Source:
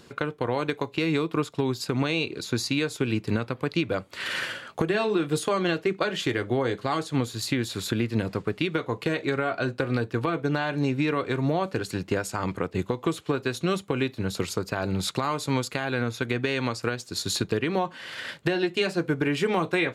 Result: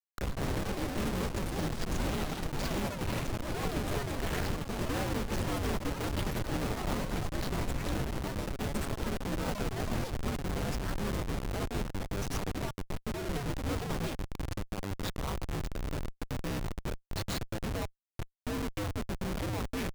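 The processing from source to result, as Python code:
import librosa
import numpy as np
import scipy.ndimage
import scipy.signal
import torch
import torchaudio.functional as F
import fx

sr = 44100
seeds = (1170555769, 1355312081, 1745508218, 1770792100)

y = x * np.sin(2.0 * np.pi * 100.0 * np.arange(len(x)) / sr)
y = fx.schmitt(y, sr, flips_db=-28.0)
y = fx.echo_pitch(y, sr, ms=82, semitones=6, count=3, db_per_echo=-3.0)
y = y * 10.0 ** (-3.0 / 20.0)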